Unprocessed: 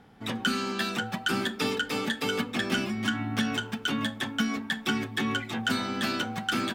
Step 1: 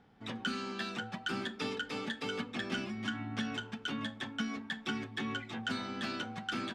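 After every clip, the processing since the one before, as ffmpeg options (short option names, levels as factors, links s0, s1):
-af "lowpass=6300,volume=0.376"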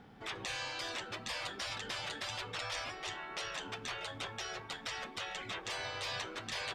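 -af "afftfilt=real='re*lt(hypot(re,im),0.02)':imag='im*lt(hypot(re,im),0.02)':win_size=1024:overlap=0.75,volume=2.24"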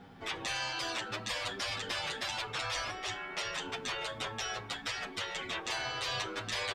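-filter_complex "[0:a]asplit=2[s0][s1];[s1]adelay=8.1,afreqshift=-0.59[s2];[s0][s2]amix=inputs=2:normalize=1,volume=2.24"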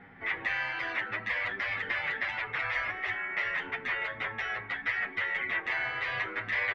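-af "lowpass=f=2000:t=q:w=6.8,volume=0.794"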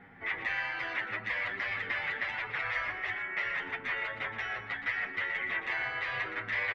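-af "aecho=1:1:119:0.299,volume=0.794"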